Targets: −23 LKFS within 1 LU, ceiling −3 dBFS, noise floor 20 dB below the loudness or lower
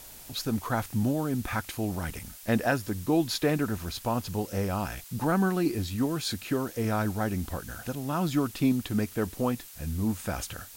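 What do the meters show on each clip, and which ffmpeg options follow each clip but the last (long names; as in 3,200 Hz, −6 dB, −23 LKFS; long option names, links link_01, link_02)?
background noise floor −47 dBFS; target noise floor −50 dBFS; integrated loudness −29.5 LKFS; sample peak −13.5 dBFS; target loudness −23.0 LKFS
→ -af "afftdn=noise_reduction=6:noise_floor=-47"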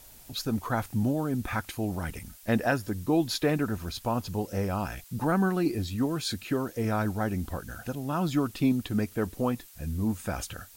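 background noise floor −52 dBFS; integrated loudness −30.0 LKFS; sample peak −13.5 dBFS; target loudness −23.0 LKFS
→ -af "volume=7dB"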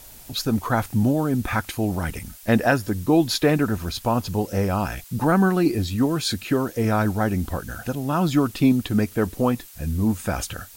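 integrated loudness −23.0 LKFS; sample peak −6.5 dBFS; background noise floor −45 dBFS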